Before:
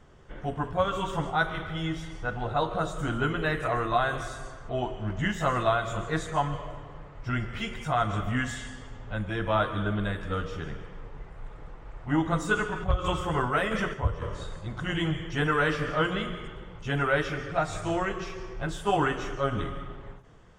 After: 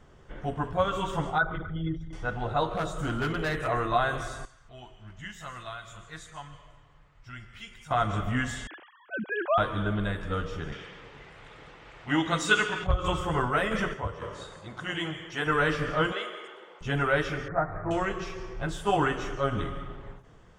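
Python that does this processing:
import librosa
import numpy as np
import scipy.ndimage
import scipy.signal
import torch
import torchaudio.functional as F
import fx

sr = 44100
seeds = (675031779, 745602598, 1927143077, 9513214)

y = fx.envelope_sharpen(x, sr, power=2.0, at=(1.38, 2.13))
y = fx.clip_hard(y, sr, threshold_db=-24.5, at=(2.7, 3.66), fade=0.02)
y = fx.tone_stack(y, sr, knobs='5-5-5', at=(4.45, 7.91))
y = fx.sine_speech(y, sr, at=(8.67, 9.58))
y = fx.weighting(y, sr, curve='D', at=(10.72, 12.87))
y = fx.highpass(y, sr, hz=fx.line((13.96, 200.0), (15.46, 580.0)), slope=6, at=(13.96, 15.46), fade=0.02)
y = fx.highpass(y, sr, hz=380.0, slope=24, at=(16.12, 16.81))
y = fx.ellip_lowpass(y, sr, hz=1900.0, order=4, stop_db=40, at=(17.48, 17.91))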